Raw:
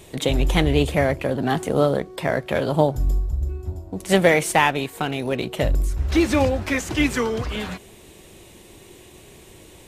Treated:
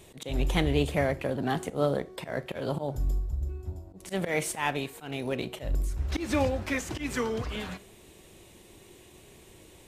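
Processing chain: auto swell 0.142 s; Schroeder reverb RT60 0.36 s, combs from 28 ms, DRR 18 dB; gain -7 dB

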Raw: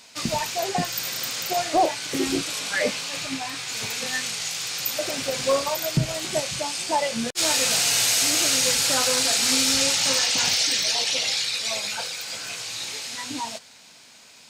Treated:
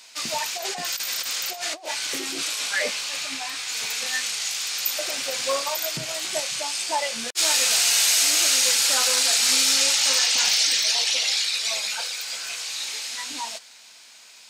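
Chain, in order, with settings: HPF 1100 Hz 6 dB/oct; 0.57–2.66 negative-ratio compressor -31 dBFS, ratio -0.5; gain +2 dB

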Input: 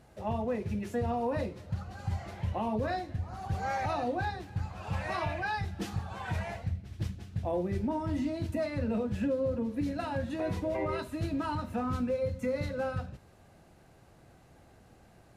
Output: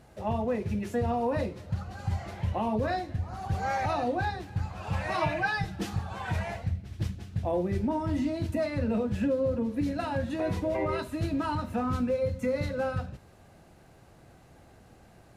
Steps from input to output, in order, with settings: 5.14–5.76 comb 6.4 ms, depth 73%; gain +3 dB

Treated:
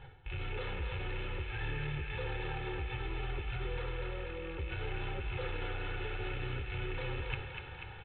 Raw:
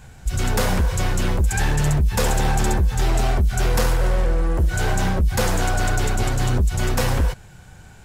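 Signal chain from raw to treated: rattling part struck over -30 dBFS, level -19 dBFS; gate -32 dBFS, range -7 dB; low shelf 83 Hz -7 dB; comb 2.3 ms, depth 94%; dynamic EQ 820 Hz, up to -7 dB, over -37 dBFS, Q 1.8; limiter -17 dBFS, peak gain reduction 9.5 dB; reverse; compressor 10:1, threshold -37 dBFS, peak gain reduction 17 dB; reverse; flange 0.57 Hz, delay 7.1 ms, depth 4.8 ms, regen -48%; thinning echo 0.244 s, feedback 73%, high-pass 450 Hz, level -5 dB; on a send at -24 dB: reverb, pre-delay 46 ms; on the sum: downsampling 8000 Hz; gain +6 dB

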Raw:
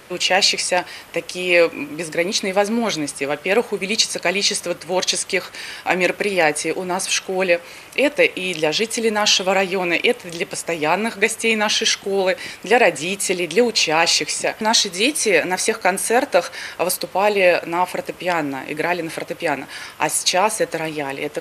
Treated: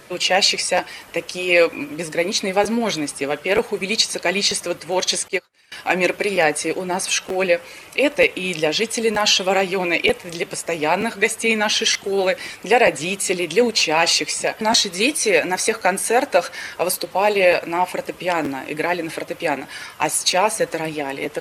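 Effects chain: bin magnitudes rounded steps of 15 dB; crackling interface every 0.93 s, samples 512, repeat, from 0.77; 5.28–5.72 upward expander 2.5:1, over -40 dBFS

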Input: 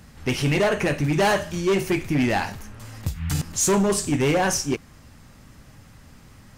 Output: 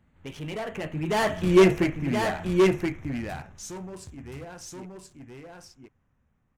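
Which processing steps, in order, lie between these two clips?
Wiener smoothing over 9 samples; Doppler pass-by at 1.56, 23 m/s, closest 2.8 m; echo 1.025 s -3.5 dB; gain +6 dB

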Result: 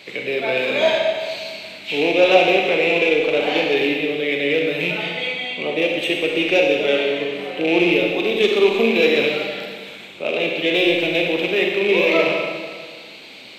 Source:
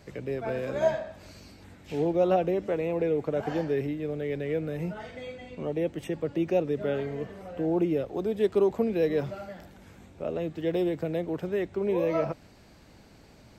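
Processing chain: rattling part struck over -33 dBFS, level -34 dBFS; HPF 290 Hz 12 dB/oct; band shelf 3000 Hz +15.5 dB 1.2 oct; soft clip -15 dBFS, distortion -23 dB; Schroeder reverb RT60 1.7 s, combs from 31 ms, DRR 0 dB; gain +8 dB

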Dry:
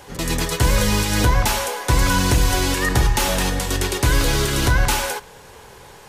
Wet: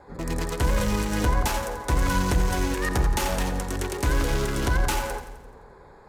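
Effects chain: Wiener smoothing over 15 samples; bell 120 Hz -12 dB 0.2 oct; on a send: split-band echo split 430 Hz, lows 0.167 s, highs 86 ms, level -10 dB; on the sum: gain -5 dB

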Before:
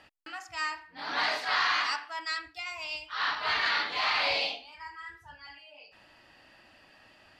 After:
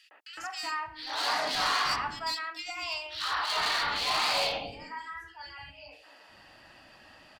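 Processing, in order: dynamic EQ 1800 Hz, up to -6 dB, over -42 dBFS, Q 1.2; one-sided clip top -30.5 dBFS; three bands offset in time highs, mids, lows 0.11/0.37 s, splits 360/2400 Hz; gain +5 dB

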